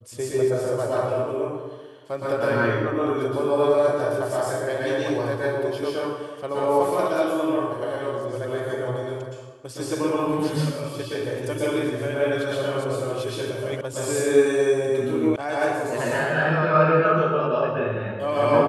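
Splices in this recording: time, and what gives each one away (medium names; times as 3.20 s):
13.81 s: sound stops dead
15.36 s: sound stops dead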